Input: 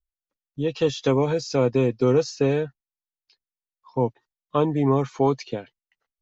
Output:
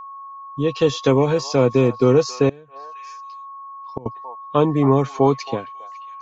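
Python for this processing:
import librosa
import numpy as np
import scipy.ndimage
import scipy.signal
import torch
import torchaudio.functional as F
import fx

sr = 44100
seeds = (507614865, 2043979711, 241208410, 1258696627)

y = x + 10.0 ** (-38.0 / 20.0) * np.sin(2.0 * np.pi * 1100.0 * np.arange(len(x)) / sr)
y = fx.echo_stepped(y, sr, ms=272, hz=930.0, octaves=1.4, feedback_pct=70, wet_db=-11.5)
y = fx.gate_flip(y, sr, shuts_db=-17.0, range_db=-24, at=(2.49, 4.06))
y = y * librosa.db_to_amplitude(4.5)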